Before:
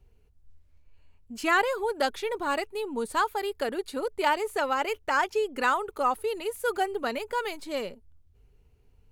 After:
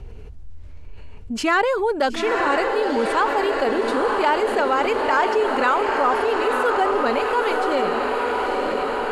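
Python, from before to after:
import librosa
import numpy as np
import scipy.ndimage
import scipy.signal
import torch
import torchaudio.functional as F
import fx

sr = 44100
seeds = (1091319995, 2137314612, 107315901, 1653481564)

p1 = scipy.signal.sosfilt(scipy.signal.butter(2, 8600.0, 'lowpass', fs=sr, output='sos'), x)
p2 = fx.high_shelf(p1, sr, hz=3200.0, db=-7.5)
p3 = fx.clip_asym(p2, sr, top_db=-20.0, bottom_db=-18.5)
p4 = p2 + (p3 * 10.0 ** (-10.0 / 20.0))
p5 = fx.vibrato(p4, sr, rate_hz=11.0, depth_cents=6.8)
p6 = p5 + fx.echo_diffused(p5, sr, ms=934, feedback_pct=63, wet_db=-5, dry=0)
p7 = fx.env_flatten(p6, sr, amount_pct=50)
y = p7 * 10.0 ** (2.5 / 20.0)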